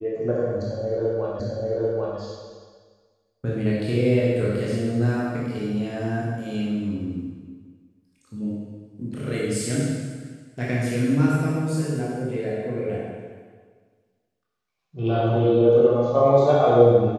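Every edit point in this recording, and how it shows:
1.40 s: repeat of the last 0.79 s

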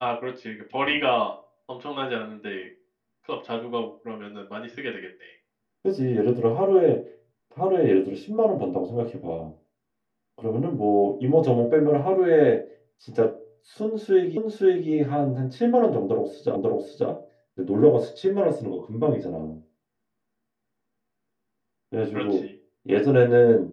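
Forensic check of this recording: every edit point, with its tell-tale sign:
14.37 s: repeat of the last 0.52 s
16.56 s: repeat of the last 0.54 s

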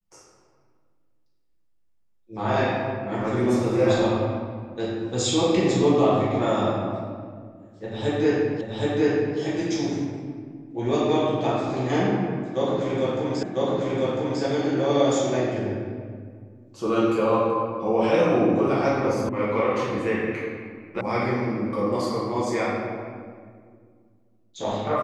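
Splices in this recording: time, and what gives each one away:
8.61 s: repeat of the last 0.77 s
13.43 s: repeat of the last 1 s
19.29 s: sound stops dead
21.01 s: sound stops dead

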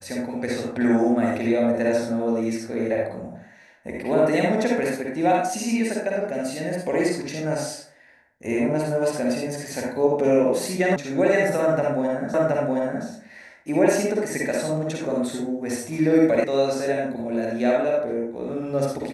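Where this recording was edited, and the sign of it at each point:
10.96 s: sound stops dead
12.34 s: repeat of the last 0.72 s
16.44 s: sound stops dead

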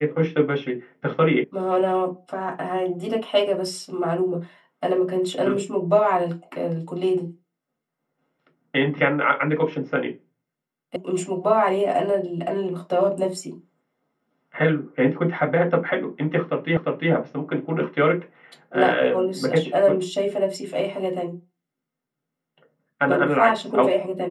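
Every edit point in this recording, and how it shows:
1.44 s: sound stops dead
10.96 s: sound stops dead
16.77 s: repeat of the last 0.35 s

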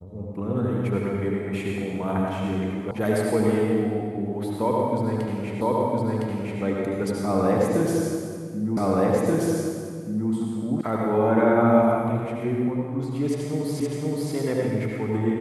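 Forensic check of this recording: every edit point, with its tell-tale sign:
2.91 s: sound stops dead
5.61 s: repeat of the last 1.01 s
8.77 s: repeat of the last 1.53 s
10.81 s: sound stops dead
13.80 s: repeat of the last 0.52 s

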